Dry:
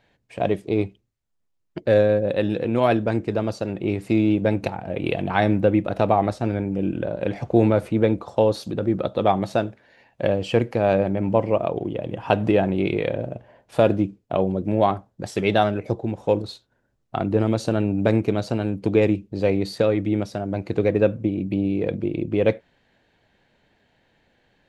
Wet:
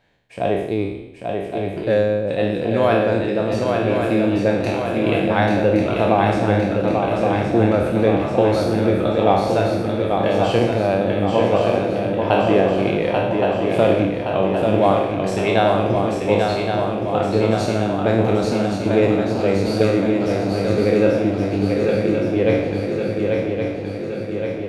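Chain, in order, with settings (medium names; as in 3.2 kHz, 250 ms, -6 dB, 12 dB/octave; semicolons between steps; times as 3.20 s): spectral sustain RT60 0.88 s; shuffle delay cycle 1119 ms, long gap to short 3:1, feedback 61%, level -4.5 dB; trim -1 dB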